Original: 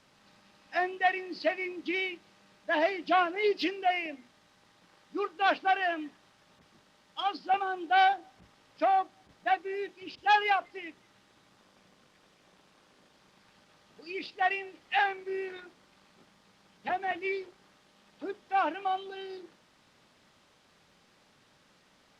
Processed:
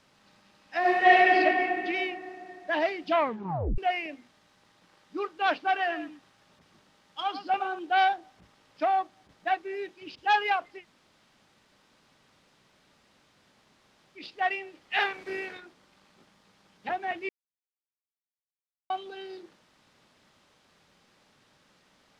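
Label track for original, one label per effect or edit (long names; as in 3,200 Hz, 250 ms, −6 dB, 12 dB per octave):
0.790000	1.330000	thrown reverb, RT60 2.8 s, DRR −11 dB
3.110000	3.110000	tape stop 0.67 s
5.590000	7.790000	single-tap delay 108 ms −10.5 dB
10.800000	14.200000	fill with room tone, crossfade 0.10 s
14.940000	15.570000	ceiling on every frequency bin ceiling under each frame's peak by 13 dB
17.290000	18.900000	silence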